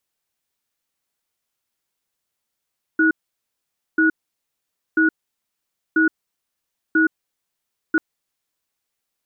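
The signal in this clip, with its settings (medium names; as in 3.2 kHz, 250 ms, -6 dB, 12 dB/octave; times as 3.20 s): cadence 319 Hz, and 1.46 kHz, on 0.12 s, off 0.87 s, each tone -15.5 dBFS 4.99 s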